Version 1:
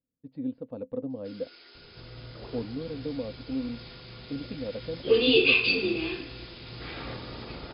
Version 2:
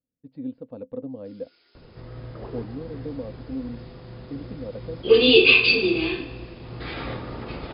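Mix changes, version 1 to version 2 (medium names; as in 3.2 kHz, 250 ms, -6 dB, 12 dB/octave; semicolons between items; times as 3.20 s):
first sound -10.0 dB; second sound +6.5 dB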